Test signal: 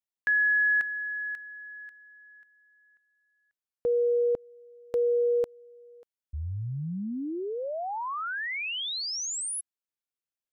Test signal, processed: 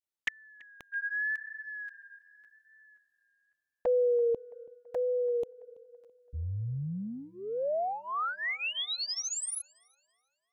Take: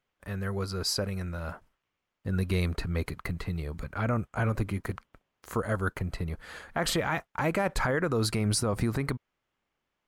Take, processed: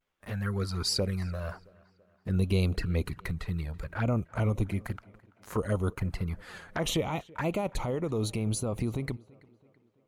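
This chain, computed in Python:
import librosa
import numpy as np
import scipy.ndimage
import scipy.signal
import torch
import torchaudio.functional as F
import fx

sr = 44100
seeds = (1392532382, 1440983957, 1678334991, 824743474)

p1 = fx.env_flanger(x, sr, rest_ms=11.9, full_db=-25.5)
p2 = fx.vibrato(p1, sr, rate_hz=0.84, depth_cents=68.0)
p3 = fx.rider(p2, sr, range_db=4, speed_s=2.0)
y = p3 + fx.echo_tape(p3, sr, ms=333, feedback_pct=55, wet_db=-22.5, lp_hz=3400.0, drive_db=14.0, wow_cents=22, dry=0)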